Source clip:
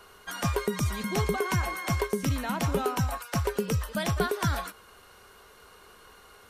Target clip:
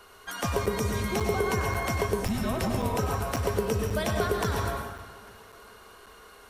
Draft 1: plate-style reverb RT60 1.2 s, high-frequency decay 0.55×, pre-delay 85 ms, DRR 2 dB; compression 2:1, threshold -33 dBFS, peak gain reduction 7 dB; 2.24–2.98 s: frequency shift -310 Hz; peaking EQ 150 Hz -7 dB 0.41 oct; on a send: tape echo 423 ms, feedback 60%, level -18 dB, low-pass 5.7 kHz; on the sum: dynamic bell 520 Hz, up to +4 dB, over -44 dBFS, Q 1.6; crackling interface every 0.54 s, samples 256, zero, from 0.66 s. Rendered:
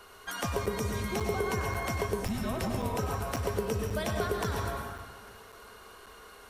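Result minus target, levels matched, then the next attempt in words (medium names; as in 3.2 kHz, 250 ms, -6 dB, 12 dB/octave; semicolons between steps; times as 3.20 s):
compression: peak gain reduction +4 dB
plate-style reverb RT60 1.2 s, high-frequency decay 0.55×, pre-delay 85 ms, DRR 2 dB; compression 2:1, threshold -25 dBFS, peak gain reduction 3 dB; 2.24–2.98 s: frequency shift -310 Hz; peaking EQ 150 Hz -7 dB 0.41 oct; on a send: tape echo 423 ms, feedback 60%, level -18 dB, low-pass 5.7 kHz; on the sum: dynamic bell 520 Hz, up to +4 dB, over -44 dBFS, Q 1.6; crackling interface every 0.54 s, samples 256, zero, from 0.66 s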